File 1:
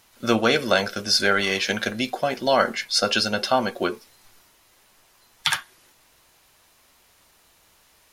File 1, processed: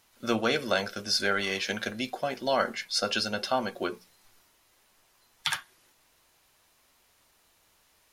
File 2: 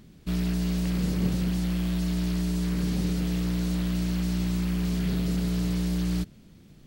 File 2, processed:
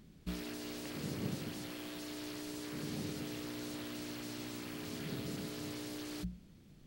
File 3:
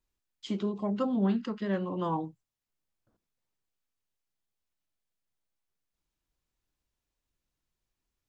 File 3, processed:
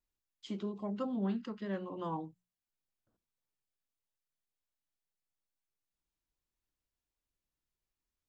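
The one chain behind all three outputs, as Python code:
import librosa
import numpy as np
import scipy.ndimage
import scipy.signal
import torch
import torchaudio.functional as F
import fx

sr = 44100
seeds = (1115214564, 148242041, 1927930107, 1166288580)

y = fx.hum_notches(x, sr, base_hz=60, count=3)
y = F.gain(torch.from_numpy(y), -7.0).numpy()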